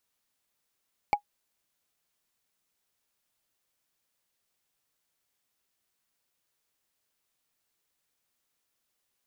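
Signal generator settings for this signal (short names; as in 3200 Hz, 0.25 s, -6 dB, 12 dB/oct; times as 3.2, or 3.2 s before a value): wood hit, lowest mode 824 Hz, decay 0.09 s, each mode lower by 8 dB, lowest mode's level -14.5 dB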